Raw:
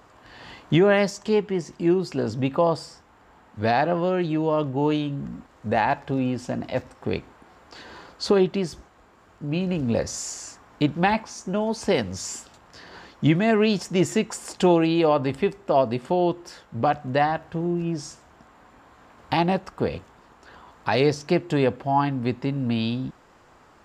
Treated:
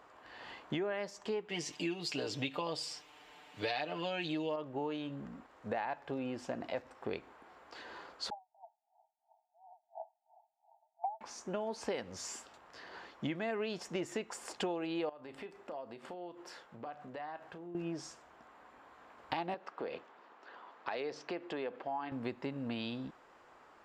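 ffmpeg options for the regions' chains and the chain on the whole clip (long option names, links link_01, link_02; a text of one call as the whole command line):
ffmpeg -i in.wav -filter_complex "[0:a]asettb=1/sr,asplit=3[link_01][link_02][link_03];[link_01]atrim=end=1.494[link_04];[link_02]atrim=start=1.49:end=4.56,asetpts=PTS-STARTPTS,afade=type=in:duration=0.004:curve=qsin,afade=type=out:start_time=3.066:duration=0.004:curve=qsin,highshelf=frequency=2000:width_type=q:width=1.5:gain=11,aecho=1:1:6.7:0.79,atrim=end_sample=135387[link_05];[link_03]atrim=start=4.556[link_06];[link_04][link_05]acrossfade=duration=0.004:curve1=hsin:curve2=qsin[link_07];[link_07][link_06]acrossfade=duration=0.004:curve1=qsin:curve2=hsin,asettb=1/sr,asplit=3[link_08][link_09][link_10];[link_08]atrim=end=8.304[link_11];[link_09]atrim=start=8.3:end=11.21,asetpts=PTS-STARTPTS,afade=type=in:duration=0.004:curve=qsin,afade=type=out:start_time=2.906:duration=0.004:curve=qsin,asuperpass=centerf=770:order=20:qfactor=2.6,aeval=exprs='val(0)*pow(10,-26*(0.5-0.5*cos(2*PI*2.9*n/s))/20)':channel_layout=same[link_12];[link_10]atrim=start=11.206[link_13];[link_11][link_12]acrossfade=duration=0.004:curve1=hsin:curve2=qsin[link_14];[link_14][link_13]acrossfade=duration=0.004:curve1=qsin:curve2=hsin,asettb=1/sr,asplit=3[link_15][link_16][link_17];[link_15]atrim=end=15.094[link_18];[link_16]atrim=start=15.09:end=17.75,asetpts=PTS-STARTPTS,afade=type=in:duration=0.004:curve=qsin,afade=type=out:start_time=2.656:duration=0.004:curve=qsin,equalizer=frequency=68:width=1:gain=-7.5,acompressor=threshold=-34dB:ratio=12:attack=3.2:release=140:knee=1:detection=peak,asplit=2[link_19][link_20];[link_20]adelay=34,volume=-13dB[link_21];[link_19][link_21]amix=inputs=2:normalize=0,atrim=end_sample=117306[link_22];[link_17]atrim=start=17.746[link_23];[link_18][link_22]acrossfade=duration=0.004:curve1=hsin:curve2=qsin[link_24];[link_24][link_23]acrossfade=duration=0.004:curve1=qsin:curve2=hsin,asettb=1/sr,asplit=3[link_25][link_26][link_27];[link_25]atrim=end=19.544[link_28];[link_26]atrim=start=19.54:end=22.12,asetpts=PTS-STARTPTS,afade=type=in:duration=0.004:curve=qsin,afade=type=out:start_time=2.576:duration=0.004:curve=qsin,highpass=230,lowpass=5000,acompressor=threshold=-28dB:ratio=3:attack=3.2:release=140:knee=1:detection=peak[link_29];[link_27]atrim=start=22.116[link_30];[link_28][link_29]acrossfade=duration=0.004:curve1=hsin:curve2=qsin[link_31];[link_31][link_30]acrossfade=duration=0.004:curve1=qsin:curve2=hsin,bass=frequency=250:gain=-13,treble=frequency=4000:gain=-7,acompressor=threshold=-29dB:ratio=6,volume=-5dB" out.wav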